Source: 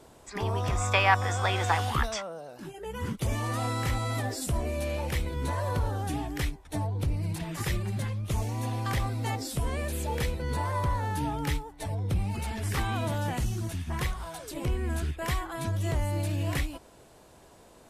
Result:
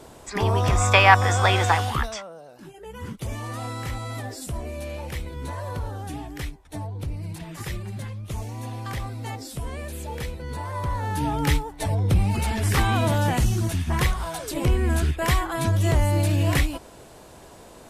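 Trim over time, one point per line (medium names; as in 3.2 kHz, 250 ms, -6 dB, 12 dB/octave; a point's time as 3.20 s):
1.54 s +8 dB
2.29 s -2 dB
10.65 s -2 dB
11.51 s +8.5 dB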